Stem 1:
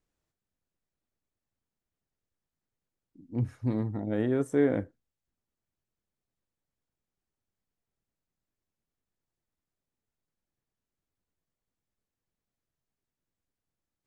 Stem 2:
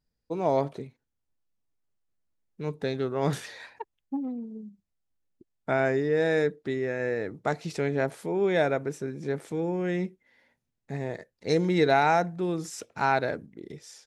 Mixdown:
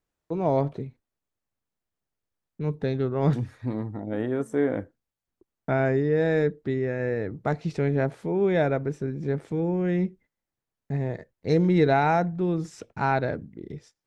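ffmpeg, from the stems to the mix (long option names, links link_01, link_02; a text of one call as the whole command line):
ffmpeg -i stem1.wav -i stem2.wav -filter_complex "[0:a]equalizer=frequency=1000:width=0.48:gain=4,volume=-1.5dB,asplit=2[link_01][link_02];[1:a]aemphasis=mode=reproduction:type=bsi,agate=range=-33dB:threshold=-48dB:ratio=16:detection=peak,volume=-0.5dB[link_03];[link_02]apad=whole_len=620079[link_04];[link_03][link_04]sidechaincompress=threshold=-40dB:ratio=10:attack=6.5:release=544[link_05];[link_01][link_05]amix=inputs=2:normalize=0" out.wav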